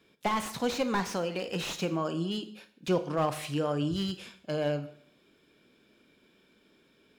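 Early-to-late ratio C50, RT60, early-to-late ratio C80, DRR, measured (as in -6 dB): 13.5 dB, 0.65 s, 17.0 dB, 11.0 dB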